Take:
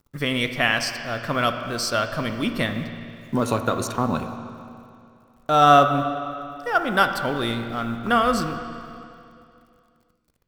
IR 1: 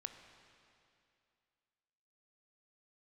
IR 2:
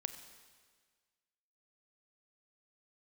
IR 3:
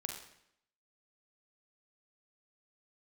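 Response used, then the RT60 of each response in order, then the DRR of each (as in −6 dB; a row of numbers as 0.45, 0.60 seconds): 1; 2.5, 1.6, 0.75 seconds; 6.5, 8.5, 2.0 decibels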